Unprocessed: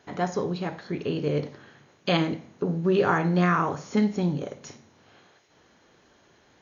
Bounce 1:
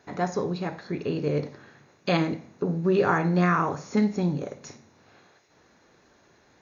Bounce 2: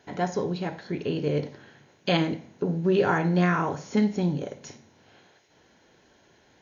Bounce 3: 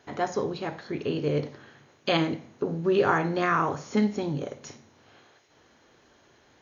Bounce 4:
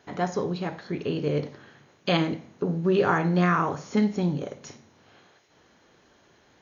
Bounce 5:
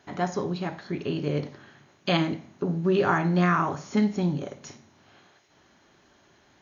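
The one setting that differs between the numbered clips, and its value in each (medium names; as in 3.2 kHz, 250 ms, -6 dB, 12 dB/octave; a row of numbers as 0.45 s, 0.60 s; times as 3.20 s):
band-stop, frequency: 3.1 kHz, 1.2 kHz, 180 Hz, 8 kHz, 480 Hz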